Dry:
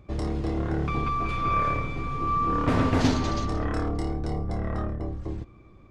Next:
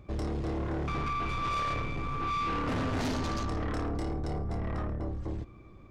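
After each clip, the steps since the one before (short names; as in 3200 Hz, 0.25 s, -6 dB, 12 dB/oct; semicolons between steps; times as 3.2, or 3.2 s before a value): soft clip -28.5 dBFS, distortion -8 dB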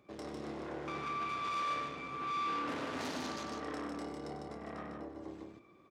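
HPF 280 Hz 12 dB/oct; bell 660 Hz -2 dB 2.2 oct; on a send: loudspeakers at several distances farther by 33 m -11 dB, 52 m -4 dB; on the sum: gain -5 dB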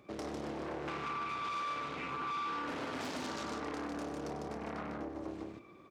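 compressor 4:1, threshold -42 dBFS, peak gain reduction 8.5 dB; Doppler distortion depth 0.41 ms; gain +5.5 dB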